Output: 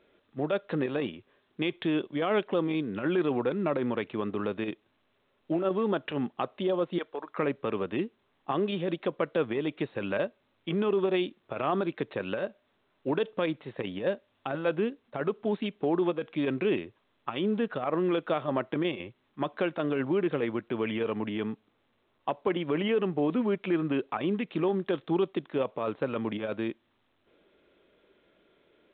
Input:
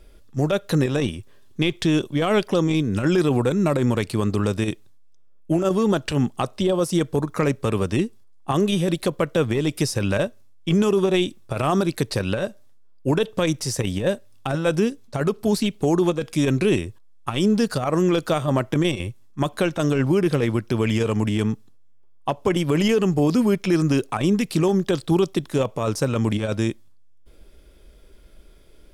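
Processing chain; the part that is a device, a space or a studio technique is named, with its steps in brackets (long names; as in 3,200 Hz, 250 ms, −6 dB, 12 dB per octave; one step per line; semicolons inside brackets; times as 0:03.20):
0:06.98–0:07.38: high-pass filter 600 Hz 12 dB per octave
telephone (band-pass filter 250–3,100 Hz; level −6 dB; A-law companding 64 kbit/s 8,000 Hz)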